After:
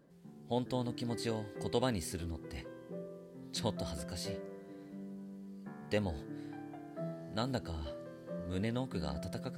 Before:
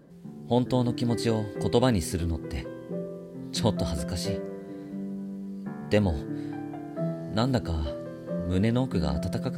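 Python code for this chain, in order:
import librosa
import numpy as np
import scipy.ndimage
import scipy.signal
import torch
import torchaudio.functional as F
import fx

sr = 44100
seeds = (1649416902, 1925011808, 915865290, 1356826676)

y = fx.low_shelf(x, sr, hz=490.0, db=-5.0)
y = y * 10.0 ** (-7.5 / 20.0)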